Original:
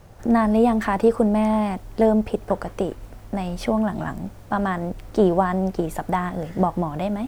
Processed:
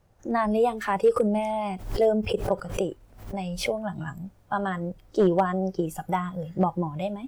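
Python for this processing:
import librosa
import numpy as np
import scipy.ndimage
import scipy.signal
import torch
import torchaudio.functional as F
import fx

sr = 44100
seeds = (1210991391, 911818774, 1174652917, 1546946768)

y = fx.noise_reduce_blind(x, sr, reduce_db=14)
y = np.clip(10.0 ** (10.5 / 20.0) * y, -1.0, 1.0) / 10.0 ** (10.5 / 20.0)
y = fx.pre_swell(y, sr, db_per_s=100.0, at=(1.16, 3.75))
y = y * librosa.db_to_amplitude(-2.0)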